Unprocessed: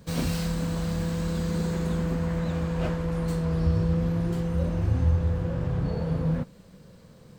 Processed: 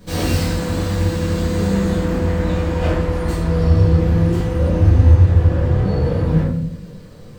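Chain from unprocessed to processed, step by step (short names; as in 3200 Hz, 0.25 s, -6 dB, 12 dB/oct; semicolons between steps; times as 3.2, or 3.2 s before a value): shoebox room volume 110 m³, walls mixed, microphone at 1.9 m; gain +2.5 dB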